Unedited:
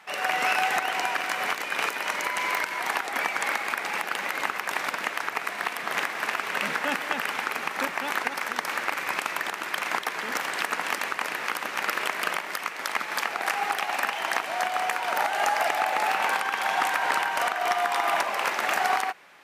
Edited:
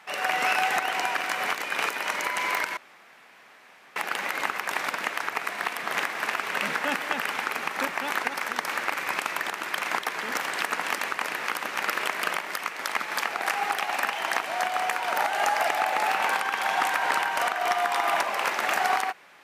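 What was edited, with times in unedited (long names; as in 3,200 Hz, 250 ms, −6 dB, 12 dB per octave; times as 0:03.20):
0:02.77–0:03.96: fill with room tone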